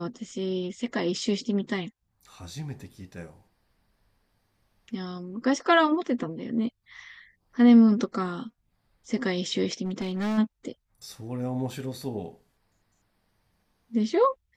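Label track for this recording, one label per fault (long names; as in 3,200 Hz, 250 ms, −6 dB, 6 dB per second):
9.840000	10.390000	clipping −25.5 dBFS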